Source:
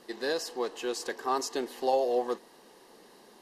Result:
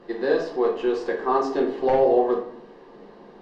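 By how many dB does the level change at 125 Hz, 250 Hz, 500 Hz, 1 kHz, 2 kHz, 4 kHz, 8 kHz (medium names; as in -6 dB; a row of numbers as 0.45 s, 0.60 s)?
no reading, +11.5 dB, +9.5 dB, +7.0 dB, +5.5 dB, -4.0 dB, under -10 dB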